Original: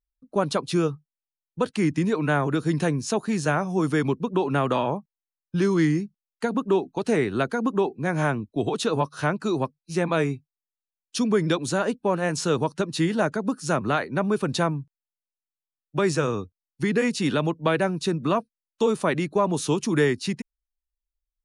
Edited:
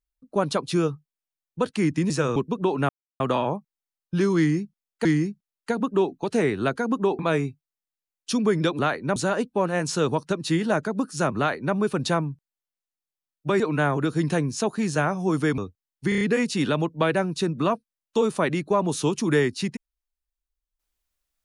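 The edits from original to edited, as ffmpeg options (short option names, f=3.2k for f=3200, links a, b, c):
-filter_complex "[0:a]asplit=14[a][b][c][d][e][f][g][h][i][j][k][l][m][n];[a]atrim=end=2.102[o];[b]atrim=start=16.088:end=16.352[p];[c]atrim=start=4.078:end=4.61,asetpts=PTS-STARTPTS,afade=t=out:st=0.528:d=0.004:c=hsin,apad=pad_dur=0.31[q];[d]atrim=start=4.61:end=6.462,asetpts=PTS-STARTPTS,afade=t=in:d=0.004:c=hsin[r];[e]atrim=start=5.788:end=7.932[s];[f]atrim=start=10.048:end=11.652[t];[g]atrim=start=13.868:end=14.242[u];[h]atrim=start=11.648:end=16.092[v];[i]atrim=start=2.098:end=4.082[w];[j]atrim=start=16.348:end=16.892[x];[k]atrim=start=16.858:end=16.892[y];[l]atrim=start=16.858:end=16.892[z];[m]atrim=start=16.858:end=16.892[aa];[n]atrim=start=16.858[ab];[o][p]acrossfade=d=0.004:c1=hsin:c2=hsin[ac];[q][r]concat=n=2:v=0:a=1[ad];[ac][ad]acrossfade=d=0.004:c1=hsin:c2=hsin[ae];[ae][s]acrossfade=d=0.004:c1=hsin:c2=hsin[af];[af][t]acrossfade=d=0.004:c1=hsin:c2=hsin[ag];[ag][u]acrossfade=d=0.004:c1=hsin:c2=hsin[ah];[ah][v]acrossfade=d=0.004:c1=hsin:c2=hsin[ai];[ai][w]acrossfade=d=0.004:c1=hsin:c2=hsin[aj];[aj][x]acrossfade=d=0.004:c1=hsin:c2=hsin[ak];[ak][y]acrossfade=d=0.004:c1=hsin:c2=hsin[al];[al][z]acrossfade=d=0.004:c1=hsin:c2=hsin[am];[am][aa]acrossfade=d=0.004:c1=hsin:c2=hsin[an];[an][ab]acrossfade=d=0.004:c1=hsin:c2=hsin"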